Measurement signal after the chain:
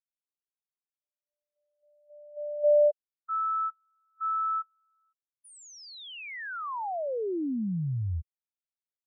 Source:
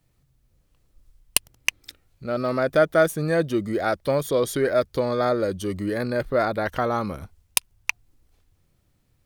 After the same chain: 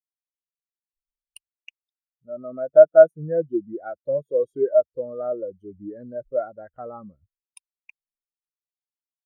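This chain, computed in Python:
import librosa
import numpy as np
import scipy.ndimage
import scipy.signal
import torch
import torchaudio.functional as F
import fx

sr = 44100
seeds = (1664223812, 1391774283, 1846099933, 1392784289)

y = fx.spectral_expand(x, sr, expansion=2.5)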